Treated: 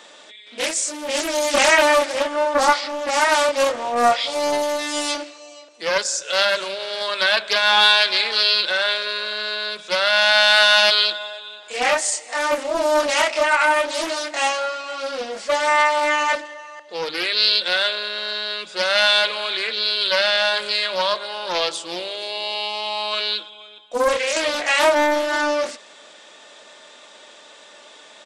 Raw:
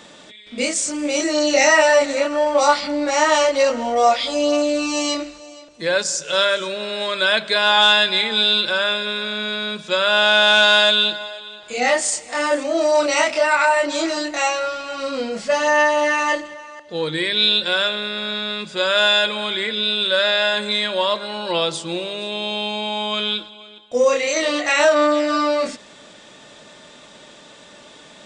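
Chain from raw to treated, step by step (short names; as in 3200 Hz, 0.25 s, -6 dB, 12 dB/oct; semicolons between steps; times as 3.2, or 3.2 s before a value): HPF 470 Hz 12 dB/oct; speakerphone echo 0.16 s, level -29 dB; Doppler distortion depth 0.41 ms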